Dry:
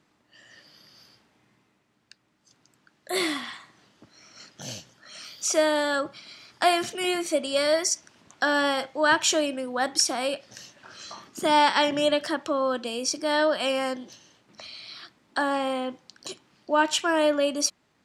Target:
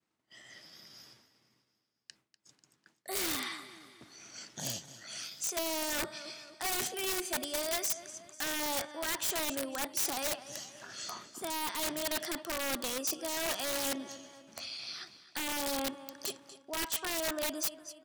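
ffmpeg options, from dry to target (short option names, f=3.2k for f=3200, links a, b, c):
-filter_complex "[0:a]areverse,acompressor=threshold=-30dB:ratio=16,areverse,agate=range=-33dB:threshold=-57dB:ratio=3:detection=peak,asplit=2[a][b];[b]aecho=0:1:245|490|735|980:0.168|0.0823|0.0403|0.0198[c];[a][c]amix=inputs=2:normalize=0,aeval=exprs='(mod(22.4*val(0)+1,2)-1)/22.4':c=same,highshelf=f=6k:g=7,asetrate=46722,aresample=44100,atempo=0.943874,volume=-2dB"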